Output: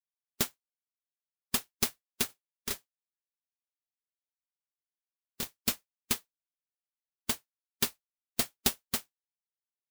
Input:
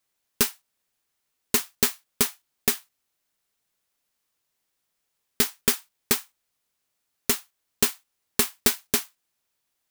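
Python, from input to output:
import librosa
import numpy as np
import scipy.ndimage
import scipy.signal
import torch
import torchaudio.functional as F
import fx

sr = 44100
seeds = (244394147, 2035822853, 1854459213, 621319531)

y = fx.bin_expand(x, sr, power=1.5)
y = fx.chorus_voices(y, sr, voices=2, hz=1.2, base_ms=29, depth_ms=3.0, mix_pct=55, at=(2.28, 5.42), fade=0.02)
y = fx.noise_mod_delay(y, sr, seeds[0], noise_hz=4000.0, depth_ms=0.46)
y = y * 10.0 ** (-4.5 / 20.0)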